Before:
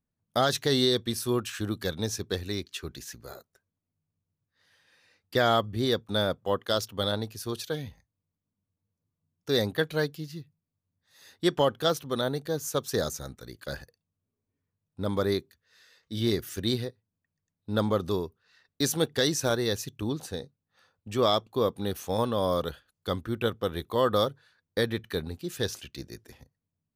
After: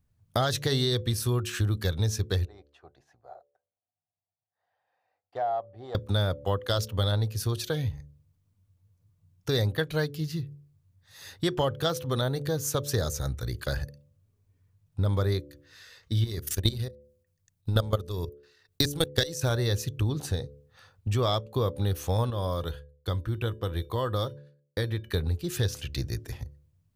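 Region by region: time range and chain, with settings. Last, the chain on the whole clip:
2.45–5.95 s: self-modulated delay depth 0.082 ms + band-pass filter 730 Hz, Q 8.6
16.24–19.42 s: treble shelf 4.4 kHz +8.5 dB + transient shaper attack +12 dB, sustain -3 dB + level held to a coarse grid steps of 18 dB
22.30–25.14 s: expander -54 dBFS + feedback comb 330 Hz, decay 0.18 s, harmonics odd
whole clip: resonant low shelf 150 Hz +10 dB, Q 1.5; de-hum 72.09 Hz, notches 8; compression 2.5:1, threshold -36 dBFS; trim +8 dB

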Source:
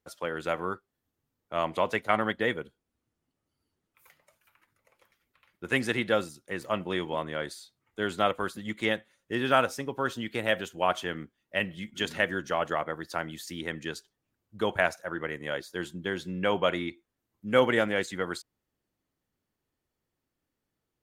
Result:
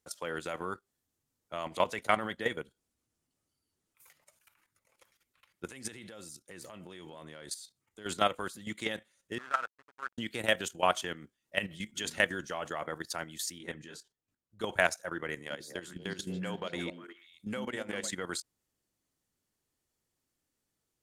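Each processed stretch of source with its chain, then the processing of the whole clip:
5.66–8.06 s: compression 10:1, threshold -34 dBFS + peaking EQ 1.4 kHz -3 dB 2.9 oct
9.38–10.18 s: hysteresis with a dead band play -23.5 dBFS + companded quantiser 4-bit + band-pass filter 1.4 kHz, Q 2.7
13.58–14.61 s: treble shelf 3.4 kHz -7 dB + detune thickener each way 50 cents
15.34–18.12 s: compression 16:1, threshold -31 dBFS + repeats whose band climbs or falls 121 ms, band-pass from 200 Hz, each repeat 1.4 oct, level -1.5 dB
whole clip: peaking EQ 8.1 kHz +11 dB 1.8 oct; level held to a coarse grid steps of 12 dB

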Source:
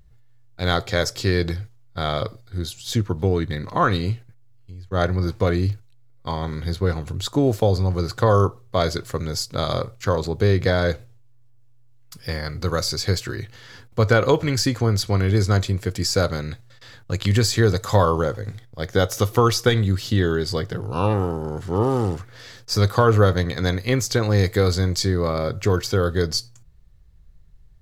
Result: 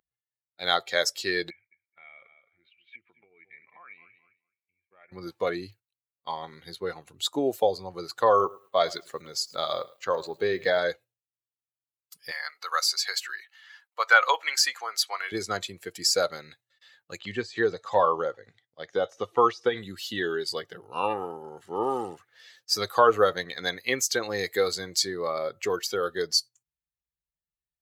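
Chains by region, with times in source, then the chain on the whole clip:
1.50–5.12 s: feedback delay 213 ms, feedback 24%, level -14 dB + compression, threshold -25 dBFS + four-pole ladder low-pass 2.4 kHz, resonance 85%
8.29–10.78 s: treble shelf 11 kHz -11 dB + bit-crushed delay 106 ms, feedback 35%, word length 7-bit, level -14.5 dB
12.31–15.32 s: high-pass 850 Hz + peaking EQ 1.1 kHz +4.5 dB 2.3 oct
17.19–19.77 s: de-esser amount 85% + low-pass 6.4 kHz
whole clip: expander on every frequency bin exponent 1.5; high-pass 530 Hz 12 dB/octave; trim +3 dB

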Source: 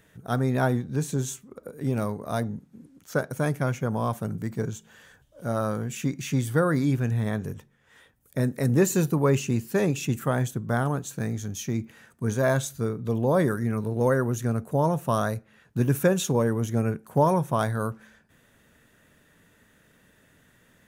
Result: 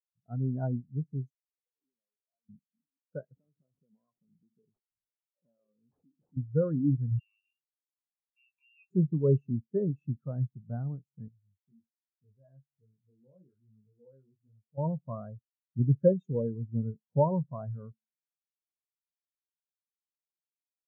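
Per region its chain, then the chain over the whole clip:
1.30–2.49 s: high-pass 300 Hz + compression 5:1, threshold -46 dBFS + expander -47 dBFS
3.36–6.37 s: high-pass 190 Hz + compression 12:1, threshold -34 dBFS + decimation with a swept rate 20×, swing 60% 1.4 Hz
7.19–8.91 s: frequency inversion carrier 2.9 kHz + compression 2:1, threshold -41 dBFS
11.28–14.78 s: chorus 1.2 Hz, delay 19 ms, depth 3.3 ms + compression 1.5:1, threshold -50 dBFS
whole clip: treble shelf 3.1 kHz -11 dB; spectral contrast expander 2.5:1; trim -1 dB

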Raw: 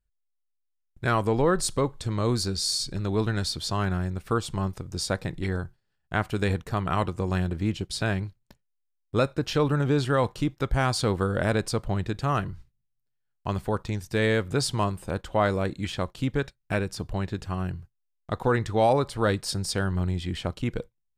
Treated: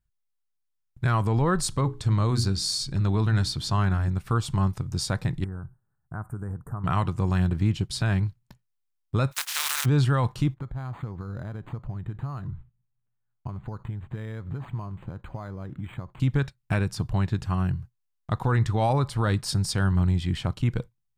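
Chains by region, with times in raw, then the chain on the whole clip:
1.65–4.08 s: treble shelf 8.9 kHz -4 dB + hum notches 60/120/180/240/300/360/420 Hz
5.44–6.84 s: Chebyshev band-stop 1.4–8.7 kHz, order 3 + compression 2:1, threshold -43 dBFS
9.31–9.84 s: spectral contrast reduction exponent 0.22 + high-pass 1.3 kHz
10.54–16.20 s: compression 10:1, threshold -34 dBFS + treble shelf 3.5 kHz -10.5 dB + decimation joined by straight lines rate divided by 8×
whole clip: graphic EQ 125/500/1000 Hz +10/-5/+4 dB; peak limiter -13.5 dBFS

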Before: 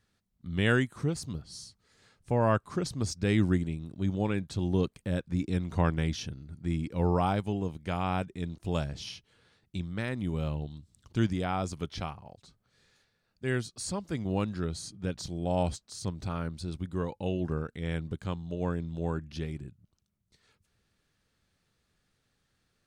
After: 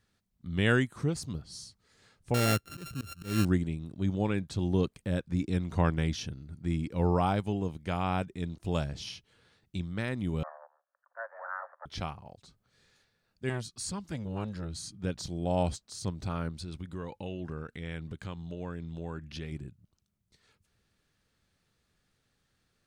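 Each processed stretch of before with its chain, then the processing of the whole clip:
2.34–3.45 s: sorted samples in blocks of 32 samples + peaking EQ 950 Hz -14.5 dB 0.57 oct + slow attack 192 ms
10.43–11.86 s: comb filter that takes the minimum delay 0.69 ms + Chebyshev band-pass 540–1800 Hz, order 5
13.49–14.99 s: peaking EQ 530 Hz -13 dB 0.76 oct + transformer saturation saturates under 530 Hz
16.51–19.52 s: dynamic bell 2.2 kHz, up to +5 dB, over -56 dBFS, Q 0.79 + compression 2.5:1, threshold -37 dBFS
whole clip: none

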